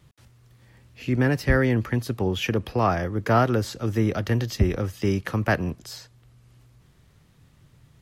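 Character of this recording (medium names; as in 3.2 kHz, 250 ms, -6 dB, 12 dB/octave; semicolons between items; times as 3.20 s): noise floor -58 dBFS; spectral tilt -6.0 dB/octave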